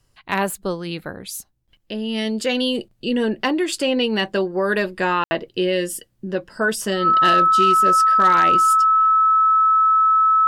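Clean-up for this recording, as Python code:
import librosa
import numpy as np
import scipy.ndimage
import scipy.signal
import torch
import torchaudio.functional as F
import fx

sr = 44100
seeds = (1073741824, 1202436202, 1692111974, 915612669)

y = fx.fix_declip(x, sr, threshold_db=-8.5)
y = fx.notch(y, sr, hz=1300.0, q=30.0)
y = fx.fix_ambience(y, sr, seeds[0], print_start_s=1.4, print_end_s=1.9, start_s=5.24, end_s=5.31)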